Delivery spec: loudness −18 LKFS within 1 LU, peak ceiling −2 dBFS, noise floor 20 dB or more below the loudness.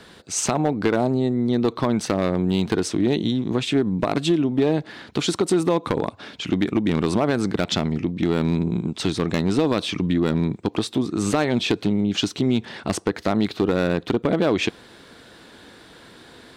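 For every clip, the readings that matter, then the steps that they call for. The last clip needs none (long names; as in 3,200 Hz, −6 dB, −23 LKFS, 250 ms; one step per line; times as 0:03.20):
share of clipped samples 1.0%; peaks flattened at −12.0 dBFS; integrated loudness −22.5 LKFS; sample peak −12.0 dBFS; target loudness −18.0 LKFS
→ clipped peaks rebuilt −12 dBFS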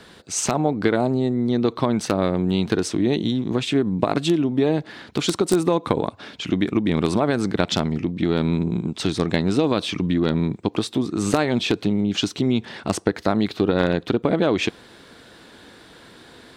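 share of clipped samples 0.0%; integrated loudness −22.0 LKFS; sample peak −3.0 dBFS; target loudness −18.0 LKFS
→ level +4 dB
brickwall limiter −2 dBFS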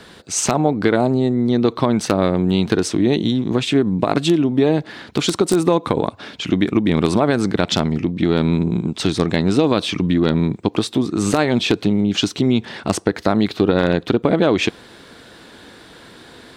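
integrated loudness −18.5 LKFS; sample peak −2.0 dBFS; background noise floor −44 dBFS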